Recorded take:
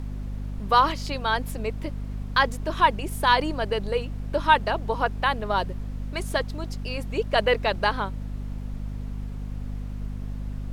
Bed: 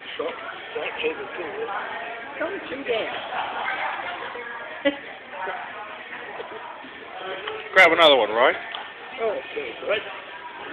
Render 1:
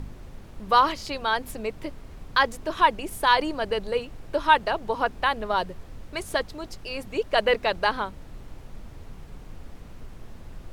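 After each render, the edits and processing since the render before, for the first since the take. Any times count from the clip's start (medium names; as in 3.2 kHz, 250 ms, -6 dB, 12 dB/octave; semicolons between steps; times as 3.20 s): de-hum 50 Hz, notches 5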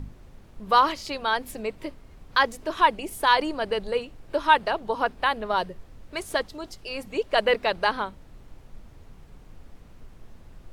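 noise print and reduce 6 dB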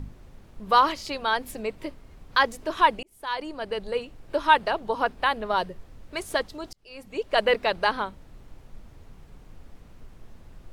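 3.03–4.56 s: fade in equal-power; 6.73–7.39 s: fade in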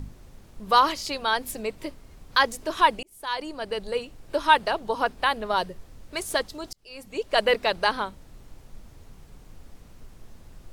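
tone controls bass 0 dB, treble +7 dB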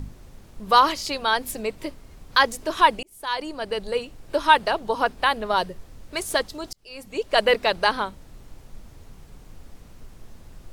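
trim +2.5 dB; peak limiter -2 dBFS, peak gain reduction 1 dB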